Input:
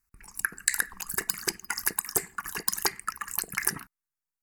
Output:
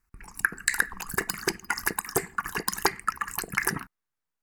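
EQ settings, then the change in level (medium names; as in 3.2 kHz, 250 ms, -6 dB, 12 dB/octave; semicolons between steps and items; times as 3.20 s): treble shelf 3.6 kHz -11.5 dB; +7.0 dB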